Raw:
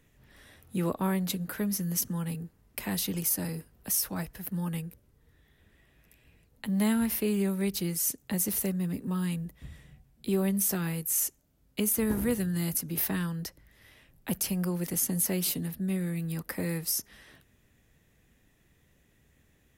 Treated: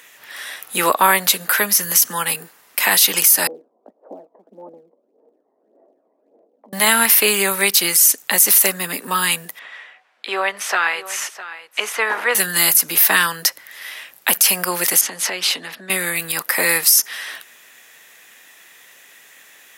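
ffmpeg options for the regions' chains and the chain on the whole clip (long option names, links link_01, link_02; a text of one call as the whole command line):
ffmpeg -i in.wav -filter_complex "[0:a]asettb=1/sr,asplit=3[link_01][link_02][link_03];[link_01]atrim=end=3.474[link_04];[link_02]atrim=start=3.47:end=6.73,asetpts=PTS-STARTPTS,afade=type=in:duration=0.004:curve=qsin,afade=type=out:start_time=3.256:duration=0.004:curve=qsin,acompressor=threshold=-45dB:ratio=2.5:attack=3.2:release=140:knee=1:detection=peak,asuperpass=centerf=400:order=8:qfactor=0.88,aphaser=in_gain=1:out_gain=1:delay=1:decay=0.58:speed=1.7:type=sinusoidal[link_05];[link_03]atrim=start=6.726[link_06];[link_04][link_05]acrossfade=duration=0.004:curve1=hsin:curve2=qsin[link_07];[link_07][link_06]acrossfade=duration=0.004:curve1=qsin:curve2=hsin,asettb=1/sr,asplit=3[link_08][link_09][link_10];[link_08]atrim=end=9.594[link_11];[link_09]atrim=start=9.59:end=12.35,asetpts=PTS-STARTPTS,afade=type=in:duration=0.004:curve=qsin,afade=type=out:start_time=2.756:duration=0.004:curve=qsin,highpass=560,lowpass=2400,aecho=1:1:657:0.178,atrim=end_sample=121716[link_12];[link_10]atrim=start=12.346[link_13];[link_11][link_12]acrossfade=duration=0.004:curve1=hsin:curve2=qsin[link_14];[link_14][link_13]acrossfade=duration=0.004:curve1=qsin:curve2=hsin,asettb=1/sr,asplit=3[link_15][link_16][link_17];[link_15]atrim=end=15.014[link_18];[link_16]atrim=start=15.01:end=15.9,asetpts=PTS-STARTPTS,afade=type=in:duration=0.004:curve=qsin,afade=type=out:start_time=0.886:duration=0.004:curve=qsin,highpass=180,lowpass=4000,acompressor=threshold=-39dB:ratio=3:attack=3.2:release=140:knee=1:detection=peak[link_19];[link_17]atrim=start=15.896[link_20];[link_18][link_19]acrossfade=duration=0.004:curve1=hsin:curve2=qsin[link_21];[link_21][link_20]acrossfade=duration=0.004:curve1=qsin:curve2=hsin,highpass=1000,alimiter=level_in=26.5dB:limit=-1dB:release=50:level=0:latency=1,volume=-1dB" out.wav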